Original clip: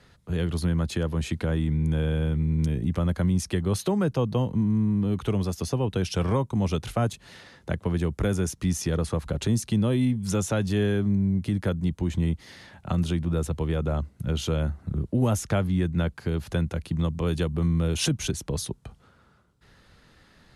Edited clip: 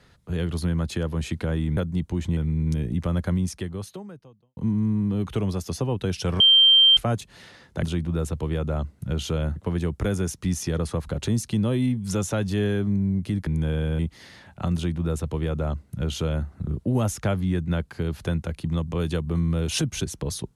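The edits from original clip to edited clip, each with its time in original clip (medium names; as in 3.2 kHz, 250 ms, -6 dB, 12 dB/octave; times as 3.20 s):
1.77–2.29 s: swap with 11.66–12.26 s
3.25–4.49 s: fade out quadratic
6.32–6.89 s: bleep 3.15 kHz -11.5 dBFS
13.01–14.74 s: copy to 7.75 s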